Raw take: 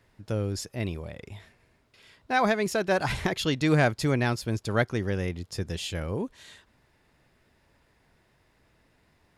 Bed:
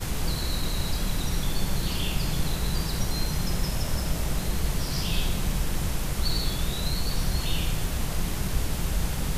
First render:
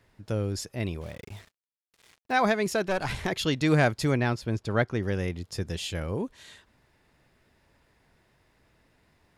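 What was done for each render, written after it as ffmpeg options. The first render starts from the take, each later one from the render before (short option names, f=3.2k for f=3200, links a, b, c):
-filter_complex "[0:a]asplit=3[a][b][c];[a]afade=t=out:st=1:d=0.02[d];[b]acrusher=bits=7:mix=0:aa=0.5,afade=t=in:st=1:d=0.02,afade=t=out:st=2.31:d=0.02[e];[c]afade=t=in:st=2.31:d=0.02[f];[d][e][f]amix=inputs=3:normalize=0,asettb=1/sr,asplit=3[g][h][i];[g]atrim=end=2.884[j];[h]atrim=start=2.88:end=3.28,asetpts=PTS-STARTPTS,afade=t=in:d=0.004:c=qsin,afade=t=out:st=0.396:d=0.004:c=qsin,aeval=exprs='(tanh(10*val(0)+0.55)-tanh(0.55))/10':c=same[k];[i]atrim=start=3.276[l];[j][k]acrossfade=d=0.004:c1=hsin:c2=qsin[m];[m][l]acrossfade=d=0.004:c1=qsin:c2=hsin,asettb=1/sr,asplit=3[n][o][p];[n]atrim=end=4.174[q];[o]atrim=start=4.17:end=5.03,asetpts=PTS-STARTPTS,afade=t=in:d=0.004:c=qsin,afade=t=out:st=0.856:d=0.004:c=qsin,lowpass=f=3.3k:p=1[r];[p]atrim=start=5.026[s];[q][r]acrossfade=d=0.004:c1=hsin:c2=qsin[t];[t][s]acrossfade=d=0.004:c1=qsin:c2=hsin"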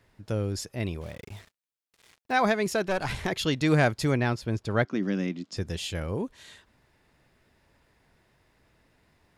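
-filter_complex "[0:a]asettb=1/sr,asplit=3[a][b][c];[a]atrim=end=4.854[d];[b]atrim=start=4.85:end=5.57,asetpts=PTS-STARTPTS,afade=t=in:d=0.004:c=qsin,afade=t=out:st=0.716:d=0.004:c=qsin,highpass=f=190:w=0.5412,highpass=f=190:w=1.3066,equalizer=f=190:t=q:w=4:g=8,equalizer=f=280:t=q:w=4:g=9,equalizer=f=450:t=q:w=4:g=-8,equalizer=f=850:t=q:w=4:g=-6,equalizer=f=1.8k:t=q:w=4:g=-3,lowpass=f=7.3k:w=0.5412,lowpass=f=7.3k:w=1.3066[e];[c]atrim=start=5.566[f];[d][e]acrossfade=d=0.004:c1=hsin:c2=qsin[g];[g][f]acrossfade=d=0.004:c1=qsin:c2=hsin"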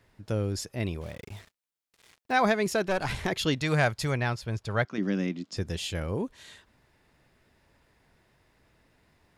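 -filter_complex "[0:a]asettb=1/sr,asplit=3[a][b][c];[a]atrim=end=3.584[d];[b]atrim=start=3.58:end=4.98,asetpts=PTS-STARTPTS,afade=t=in:d=0.004:c=qsin,afade=t=out:st=1.396:d=0.004:c=qsin,equalizer=f=290:w=1.2:g=-9.5[e];[c]atrim=start=4.976[f];[d][e]acrossfade=d=0.004:c1=hsin:c2=qsin[g];[g][f]acrossfade=d=0.004:c1=qsin:c2=hsin"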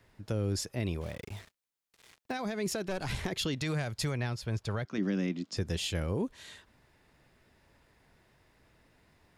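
-filter_complex "[0:a]alimiter=limit=-21.5dB:level=0:latency=1:release=93,acrossover=split=450|3000[a][b][c];[b]acompressor=threshold=-38dB:ratio=6[d];[a][d][c]amix=inputs=3:normalize=0"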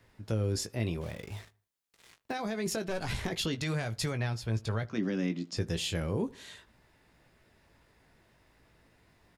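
-filter_complex "[0:a]asplit=2[a][b];[b]adelay=18,volume=-8.5dB[c];[a][c]amix=inputs=2:normalize=0,asplit=2[d][e];[e]adelay=76,lowpass=f=1.8k:p=1,volume=-22dB,asplit=2[f][g];[g]adelay=76,lowpass=f=1.8k:p=1,volume=0.44,asplit=2[h][i];[i]adelay=76,lowpass=f=1.8k:p=1,volume=0.44[j];[d][f][h][j]amix=inputs=4:normalize=0"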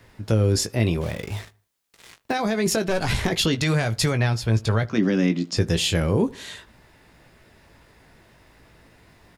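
-af "volume=11dB"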